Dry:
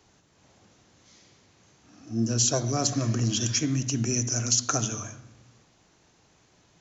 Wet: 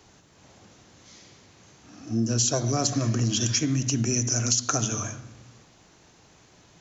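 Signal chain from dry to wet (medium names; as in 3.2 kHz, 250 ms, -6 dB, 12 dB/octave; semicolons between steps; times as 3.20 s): compression 2.5:1, threshold -29 dBFS, peak gain reduction 7.5 dB; trim +6 dB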